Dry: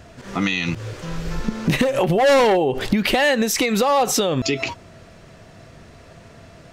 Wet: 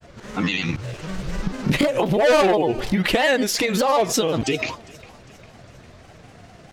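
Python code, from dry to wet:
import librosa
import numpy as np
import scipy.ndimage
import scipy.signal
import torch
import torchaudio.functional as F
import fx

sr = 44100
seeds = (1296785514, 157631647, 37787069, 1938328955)

y = fx.granulator(x, sr, seeds[0], grain_ms=100.0, per_s=20.0, spray_ms=18.0, spread_st=3)
y = fx.echo_thinned(y, sr, ms=403, feedback_pct=52, hz=420.0, wet_db=-22.0)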